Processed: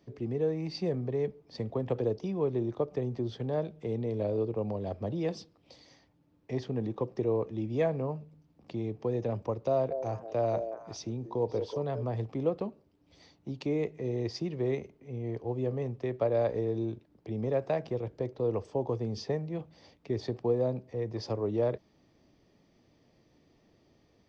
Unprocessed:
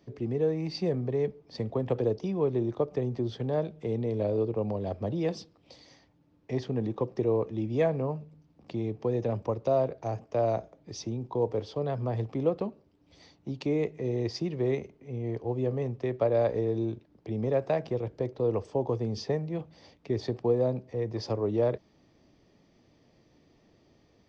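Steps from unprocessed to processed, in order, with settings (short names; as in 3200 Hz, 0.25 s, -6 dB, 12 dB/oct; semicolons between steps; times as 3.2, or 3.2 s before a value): 9.72–12.03 delay with a stepping band-pass 0.186 s, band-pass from 470 Hz, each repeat 1.4 oct, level -5 dB; gain -2.5 dB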